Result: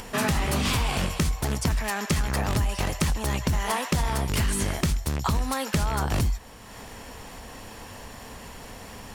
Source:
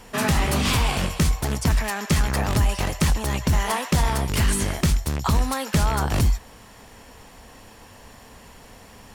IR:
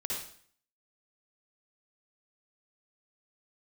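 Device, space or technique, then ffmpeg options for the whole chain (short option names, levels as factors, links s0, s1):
upward and downward compression: -af "acompressor=mode=upward:threshold=0.02:ratio=2.5,acompressor=threshold=0.0891:ratio=6"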